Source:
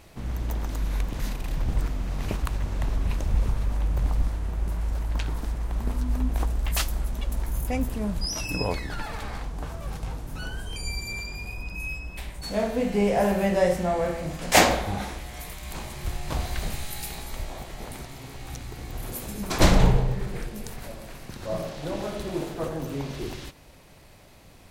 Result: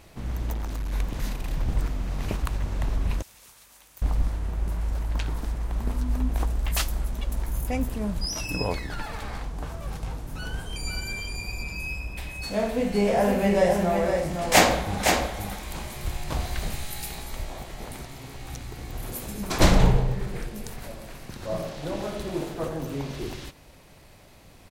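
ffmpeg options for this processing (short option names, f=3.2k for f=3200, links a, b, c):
-filter_complex "[0:a]asettb=1/sr,asplit=3[a][b][c];[a]atrim=end=0.534[d];[b]atrim=start=0.53:end=0.93,asetpts=PTS-STARTPTS,afade=t=in:d=0.004:c=qsin,afade=t=out:st=0.396:d=0.004:c=qsin,asoftclip=type=hard:threshold=-26.5dB[e];[c]atrim=start=0.926[f];[d][e]acrossfade=d=0.004:c1=hsin:c2=qsin[g];[g][f]acrossfade=d=0.004:c1=qsin:c2=hsin,asettb=1/sr,asplit=3[h][i][j];[h]atrim=end=3.224[k];[i]atrim=start=3.22:end=4.02,asetpts=PTS-STARTPTS,afade=t=in:d=0.004:c=qsin,afade=t=out:st=0.796:d=0.004:c=qsin,aderivative[l];[j]atrim=start=4.016[m];[k][l]acrossfade=d=0.004:c1=hsin:c2=qsin[n];[n][m]acrossfade=d=0.004:c1=qsin:c2=hsin,asettb=1/sr,asplit=3[o][p][q];[o]atrim=end=7.074[r];[p]atrim=start=7.07:end=9.28,asetpts=PTS-STARTPTS,afade=t=in:d=0.004:c=qsin,afade=t=out:st=2.206:d=0.004:c=qsin,aeval=exprs='sgn(val(0))*max(abs(val(0))-0.002,0)':c=same[s];[q]atrim=start=9.276[t];[r][s]acrossfade=d=0.004:c1=hsin:c2=qsin[u];[u][t]acrossfade=d=0.004:c1=qsin:c2=hsin,asplit=3[v][w][x];[v]afade=t=out:st=10.44:d=0.02[y];[w]aecho=1:1:513:0.562,afade=t=in:st=10.44:d=0.02,afade=t=out:st=16.23:d=0.02[z];[x]afade=t=in:st=16.23:d=0.02[aa];[y][z][aa]amix=inputs=3:normalize=0"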